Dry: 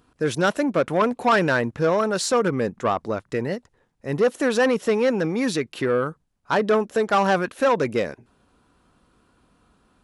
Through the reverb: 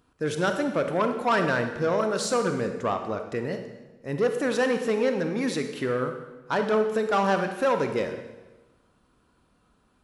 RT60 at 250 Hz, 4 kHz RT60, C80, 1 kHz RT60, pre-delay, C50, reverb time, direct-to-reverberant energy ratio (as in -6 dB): 1.2 s, 1.0 s, 9.0 dB, 1.1 s, 30 ms, 7.5 dB, 1.2 s, 6.0 dB